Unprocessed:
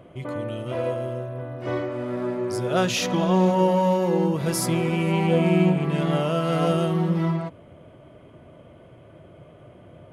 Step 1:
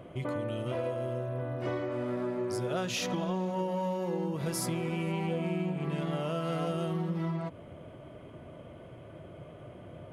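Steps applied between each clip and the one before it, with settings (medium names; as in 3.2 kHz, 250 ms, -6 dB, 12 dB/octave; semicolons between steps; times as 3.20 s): compression 6:1, threshold -30 dBFS, peak gain reduction 14.5 dB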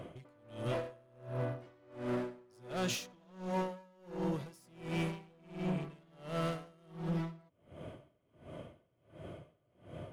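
peaking EQ 6.4 kHz +4 dB 1.9 oct; overload inside the chain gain 31 dB; logarithmic tremolo 1.4 Hz, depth 31 dB; trim +1.5 dB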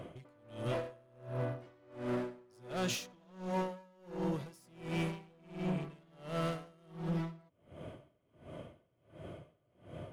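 no audible change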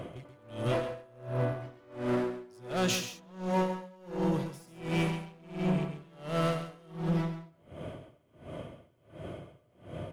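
delay 135 ms -10.5 dB; trim +6 dB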